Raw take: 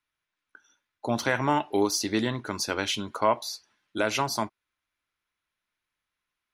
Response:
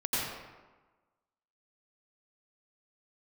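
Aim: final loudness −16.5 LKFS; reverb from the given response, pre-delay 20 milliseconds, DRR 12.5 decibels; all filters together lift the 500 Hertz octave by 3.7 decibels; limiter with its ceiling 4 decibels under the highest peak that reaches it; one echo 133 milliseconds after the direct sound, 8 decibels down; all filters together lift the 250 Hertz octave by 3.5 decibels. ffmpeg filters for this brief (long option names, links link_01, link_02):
-filter_complex "[0:a]equalizer=frequency=250:width_type=o:gain=3,equalizer=frequency=500:width_type=o:gain=4,alimiter=limit=-12.5dB:level=0:latency=1,aecho=1:1:133:0.398,asplit=2[link_01][link_02];[1:a]atrim=start_sample=2205,adelay=20[link_03];[link_02][link_03]afir=irnorm=-1:irlink=0,volume=-21dB[link_04];[link_01][link_04]amix=inputs=2:normalize=0,volume=10dB"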